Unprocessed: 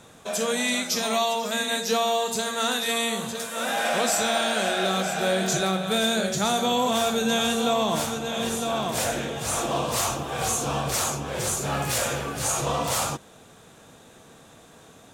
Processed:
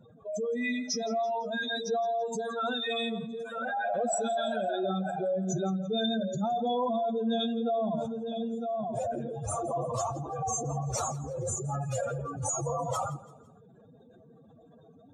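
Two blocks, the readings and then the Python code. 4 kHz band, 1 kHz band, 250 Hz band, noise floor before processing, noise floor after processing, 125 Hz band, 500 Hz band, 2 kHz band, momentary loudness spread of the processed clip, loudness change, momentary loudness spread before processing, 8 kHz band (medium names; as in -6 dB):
-11.5 dB, -6.0 dB, -4.0 dB, -51 dBFS, -57 dBFS, -2.5 dB, -4.5 dB, -10.5 dB, 5 LU, -7.0 dB, 5 LU, -10.5 dB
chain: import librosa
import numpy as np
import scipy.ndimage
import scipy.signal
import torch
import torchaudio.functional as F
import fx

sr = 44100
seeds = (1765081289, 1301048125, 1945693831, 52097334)

y = fx.spec_expand(x, sr, power=3.4)
y = fx.echo_feedback(y, sr, ms=168, feedback_pct=43, wet_db=-19)
y = y * librosa.db_to_amplitude(-5.0)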